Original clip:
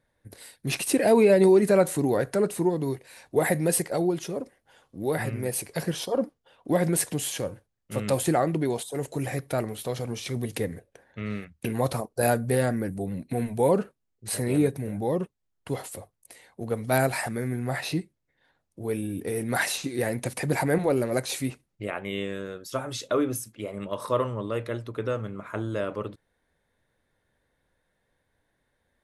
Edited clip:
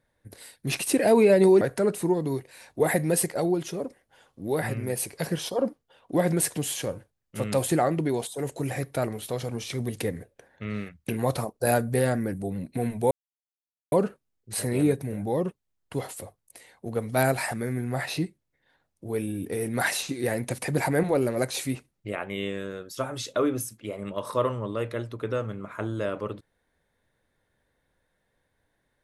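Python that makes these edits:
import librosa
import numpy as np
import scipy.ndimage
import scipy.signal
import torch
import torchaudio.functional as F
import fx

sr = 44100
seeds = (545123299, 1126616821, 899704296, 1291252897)

y = fx.edit(x, sr, fx.cut(start_s=1.61, length_s=0.56),
    fx.insert_silence(at_s=13.67, length_s=0.81), tone=tone)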